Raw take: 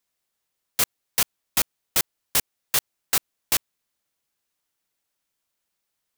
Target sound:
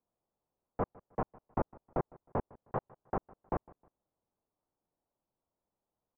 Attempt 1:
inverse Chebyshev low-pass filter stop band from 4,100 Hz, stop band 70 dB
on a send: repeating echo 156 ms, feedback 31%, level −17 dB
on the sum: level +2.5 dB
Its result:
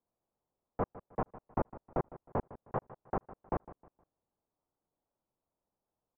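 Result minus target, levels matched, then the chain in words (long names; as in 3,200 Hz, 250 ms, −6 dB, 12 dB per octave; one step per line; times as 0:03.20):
echo-to-direct +6.5 dB
inverse Chebyshev low-pass filter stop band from 4,100 Hz, stop band 70 dB
on a send: repeating echo 156 ms, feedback 31%, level −23.5 dB
on the sum: level +2.5 dB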